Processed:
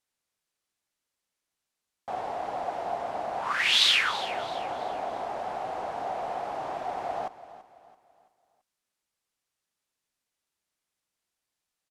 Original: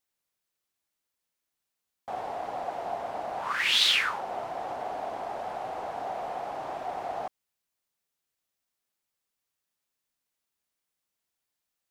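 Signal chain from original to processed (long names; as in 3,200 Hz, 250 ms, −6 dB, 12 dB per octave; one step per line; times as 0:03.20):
low-pass filter 11,000 Hz 12 dB per octave
repeating echo 334 ms, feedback 40%, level −15.5 dB
level +1.5 dB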